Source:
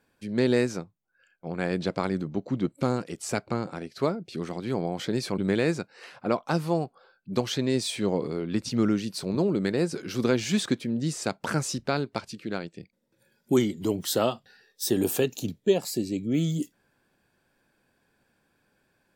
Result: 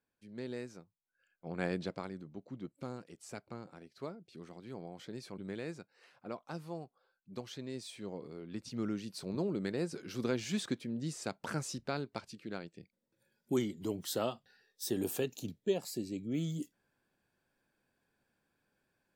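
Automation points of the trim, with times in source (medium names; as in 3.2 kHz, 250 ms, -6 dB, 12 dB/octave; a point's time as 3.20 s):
0.81 s -19 dB
1.65 s -6 dB
2.16 s -17 dB
8.21 s -17 dB
9.27 s -10 dB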